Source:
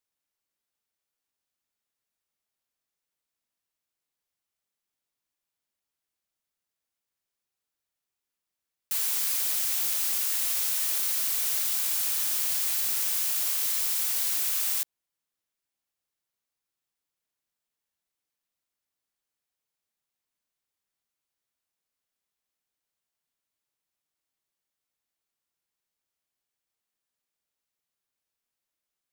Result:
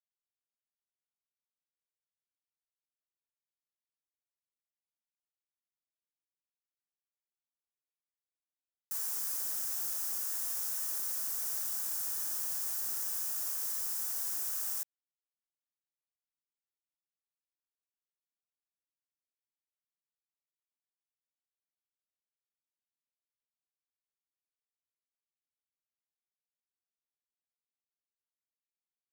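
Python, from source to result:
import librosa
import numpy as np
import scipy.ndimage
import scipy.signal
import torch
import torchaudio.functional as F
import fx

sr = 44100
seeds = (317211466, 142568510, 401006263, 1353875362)

y = fx.delta_hold(x, sr, step_db=-35.0)
y = fx.band_shelf(y, sr, hz=3000.0, db=-11.5, octaves=1.3)
y = y * librosa.db_to_amplitude(-8.0)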